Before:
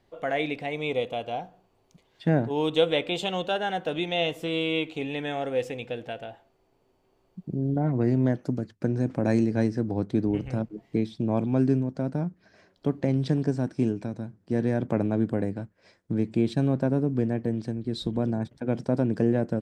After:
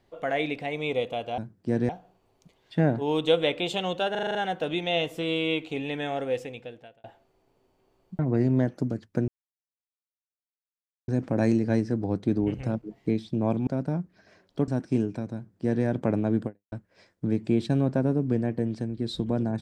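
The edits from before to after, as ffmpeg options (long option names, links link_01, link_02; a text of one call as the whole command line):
ffmpeg -i in.wav -filter_complex "[0:a]asplit=15[link_01][link_02][link_03][link_04][link_05][link_06][link_07][link_08][link_09][link_10][link_11][link_12][link_13][link_14][link_15];[link_01]atrim=end=1.382[link_16];[link_02]atrim=start=14.208:end=14.722[link_17];[link_03]atrim=start=1.378:end=3.642[link_18];[link_04]atrim=start=3.598:end=3.642[link_19];[link_05]atrim=start=3.598:end=3.642[link_20];[link_06]atrim=start=3.598:end=3.642[link_21];[link_07]atrim=start=3.598:end=3.642[link_22];[link_08]atrim=start=3.598:end=3.642[link_23];[link_09]atrim=start=3.598:end=6.29,asetpts=PTS-STARTPTS,afade=type=out:start_time=1.862:duration=0.83[link_24];[link_10]atrim=start=6.29:end=7.442,asetpts=PTS-STARTPTS,afade=type=in:duration=0.004:curve=hsin[link_25];[link_11]atrim=start=7.858:end=8.95,asetpts=PTS-STARTPTS,afade=type=out:start_time=1.088:duration=0.004:curve=hsin,apad=pad_dur=1.8[link_26];[link_12]atrim=start=8.95:end=11.542,asetpts=PTS-STARTPTS,afade=type=in:duration=0.004:curve=hsin[link_27];[link_13]atrim=start=11.938:end=12.952[link_28];[link_14]atrim=start=13.548:end=15.59,asetpts=PTS-STARTPTS,afade=type=out:start_time=1.782:duration=0.26:curve=exp[link_29];[link_15]atrim=start=15.59,asetpts=PTS-STARTPTS,afade=type=in:duration=0.004:curve=hsin[link_30];[link_16][link_17]acrossfade=duration=0.004:curve1=hsin:curve2=hsin[link_31];[link_31][link_18]acrossfade=duration=0.004:curve1=hsin:curve2=hsin[link_32];[link_32][link_19]acrossfade=duration=0.004:curve1=hsin:curve2=hsin[link_33];[link_33][link_20]acrossfade=duration=0.004:curve1=hsin:curve2=hsin[link_34];[link_34][link_21]acrossfade=duration=0.004:curve1=hsin:curve2=hsin[link_35];[link_35][link_22]acrossfade=duration=0.004:curve1=hsin:curve2=hsin[link_36];[link_36][link_23]acrossfade=duration=0.004:curve1=hsin:curve2=hsin[link_37];[link_24][link_25]concat=n=2:v=0:a=1[link_38];[link_37][link_38]acrossfade=duration=0.004:curve1=hsin:curve2=hsin[link_39];[link_26][link_27]concat=n=2:v=0:a=1[link_40];[link_39][link_40]acrossfade=duration=0.004:curve1=hsin:curve2=hsin[link_41];[link_41][link_28]acrossfade=duration=0.004:curve1=hsin:curve2=hsin[link_42];[link_29][link_30]concat=n=2:v=0:a=1[link_43];[link_42][link_43]acrossfade=duration=0.004:curve1=hsin:curve2=hsin" out.wav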